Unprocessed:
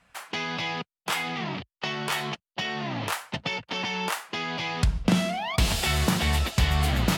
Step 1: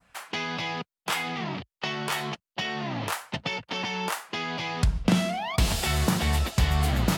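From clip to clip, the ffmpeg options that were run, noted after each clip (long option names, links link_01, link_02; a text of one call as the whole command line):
ffmpeg -i in.wav -af "adynamicequalizer=threshold=0.0112:dfrequency=2800:dqfactor=0.87:tfrequency=2800:tqfactor=0.87:attack=5:release=100:ratio=0.375:range=2:mode=cutabove:tftype=bell" out.wav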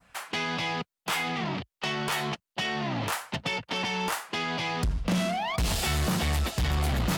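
ffmpeg -i in.wav -af "asoftclip=type=tanh:threshold=-25dB,volume=2.5dB" out.wav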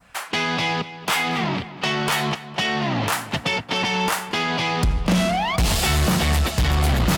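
ffmpeg -i in.wav -filter_complex "[0:a]asplit=2[link_01][link_02];[link_02]adelay=231,lowpass=frequency=4100:poles=1,volume=-14.5dB,asplit=2[link_03][link_04];[link_04]adelay=231,lowpass=frequency=4100:poles=1,volume=0.54,asplit=2[link_05][link_06];[link_06]adelay=231,lowpass=frequency=4100:poles=1,volume=0.54,asplit=2[link_07][link_08];[link_08]adelay=231,lowpass=frequency=4100:poles=1,volume=0.54,asplit=2[link_09][link_10];[link_10]adelay=231,lowpass=frequency=4100:poles=1,volume=0.54[link_11];[link_01][link_03][link_05][link_07][link_09][link_11]amix=inputs=6:normalize=0,volume=7.5dB" out.wav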